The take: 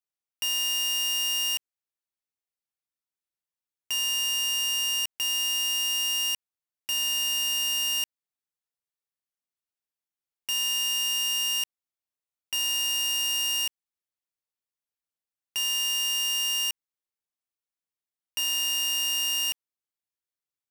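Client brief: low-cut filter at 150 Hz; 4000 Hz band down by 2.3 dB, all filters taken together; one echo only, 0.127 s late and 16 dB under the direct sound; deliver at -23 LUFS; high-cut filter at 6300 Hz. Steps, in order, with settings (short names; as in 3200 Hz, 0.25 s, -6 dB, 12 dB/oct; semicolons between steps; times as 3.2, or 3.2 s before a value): HPF 150 Hz; LPF 6300 Hz; bell 4000 Hz -4 dB; echo 0.127 s -16 dB; gain +4.5 dB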